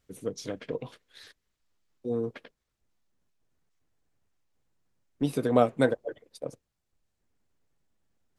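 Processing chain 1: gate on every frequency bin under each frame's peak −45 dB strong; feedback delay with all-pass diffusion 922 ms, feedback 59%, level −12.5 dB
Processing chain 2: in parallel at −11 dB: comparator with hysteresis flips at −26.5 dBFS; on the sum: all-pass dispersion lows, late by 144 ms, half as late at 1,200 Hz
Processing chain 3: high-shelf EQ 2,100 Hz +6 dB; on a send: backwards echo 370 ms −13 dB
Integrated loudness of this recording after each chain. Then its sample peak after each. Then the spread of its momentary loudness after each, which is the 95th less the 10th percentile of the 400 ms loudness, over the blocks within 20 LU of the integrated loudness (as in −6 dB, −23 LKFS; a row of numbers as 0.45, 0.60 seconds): −31.5, −29.5, −30.0 LKFS; −9.0, −8.0, −8.5 dBFS; 24, 17, 23 LU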